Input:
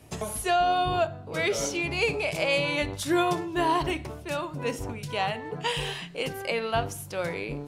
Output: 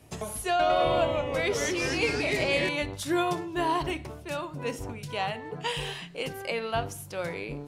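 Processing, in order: 0.49–2.69 echoes that change speed 0.103 s, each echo -2 st, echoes 3; gain -2.5 dB

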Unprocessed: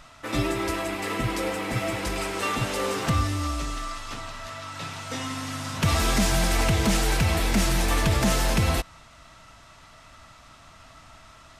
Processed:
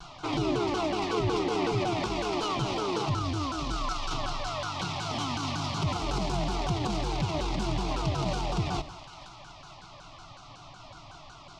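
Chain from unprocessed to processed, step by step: tracing distortion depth 0.28 ms; LPF 5500 Hz 24 dB/oct; in parallel at +1 dB: vocal rider within 3 dB; on the sum: limiter -18 dBFS, peak gain reduction 11 dB; fixed phaser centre 340 Hz, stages 8; 1.12–1.83 whine 410 Hz -28 dBFS; added harmonics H 8 -34 dB, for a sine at -15.5 dBFS; on a send: split-band echo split 770 Hz, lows 86 ms, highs 0.469 s, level -14 dB; on the sum: shaped vibrato saw down 5.4 Hz, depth 250 cents

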